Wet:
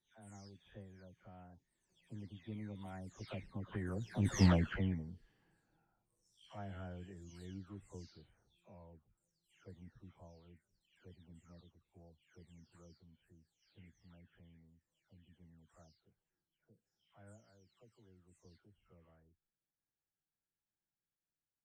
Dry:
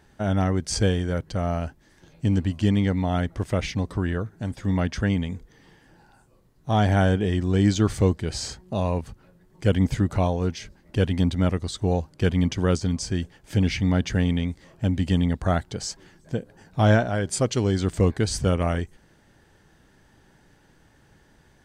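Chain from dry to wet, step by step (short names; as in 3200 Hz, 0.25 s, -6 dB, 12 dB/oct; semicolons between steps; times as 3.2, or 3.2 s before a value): spectral delay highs early, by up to 0.445 s; Doppler pass-by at 4.35, 18 m/s, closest 1.7 m; added harmonics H 8 -26 dB, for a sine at -16.5 dBFS; gain +1 dB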